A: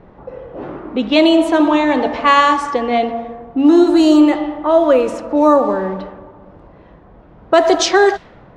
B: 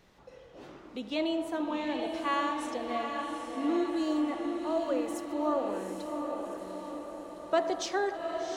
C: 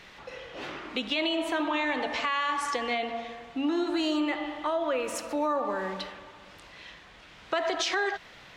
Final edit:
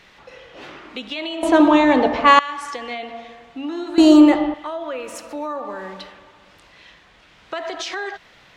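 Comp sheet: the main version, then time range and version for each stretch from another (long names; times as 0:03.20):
C
0:01.43–0:02.39: punch in from A
0:03.98–0:04.54: punch in from A
not used: B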